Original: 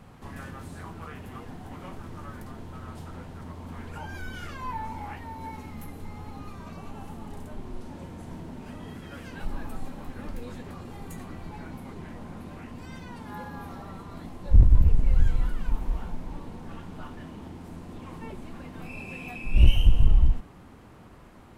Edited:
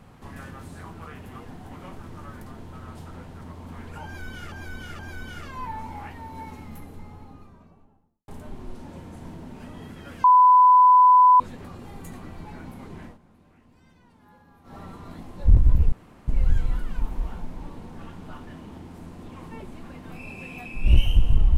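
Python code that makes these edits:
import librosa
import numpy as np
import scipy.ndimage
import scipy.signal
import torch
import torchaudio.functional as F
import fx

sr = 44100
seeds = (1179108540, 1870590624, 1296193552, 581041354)

y = fx.studio_fade_out(x, sr, start_s=5.54, length_s=1.8)
y = fx.edit(y, sr, fx.repeat(start_s=4.05, length_s=0.47, count=3),
    fx.bleep(start_s=9.3, length_s=1.16, hz=1000.0, db=-10.5),
    fx.fade_down_up(start_s=12.11, length_s=1.72, db=-16.0, fade_s=0.13),
    fx.insert_room_tone(at_s=14.98, length_s=0.36), tone=tone)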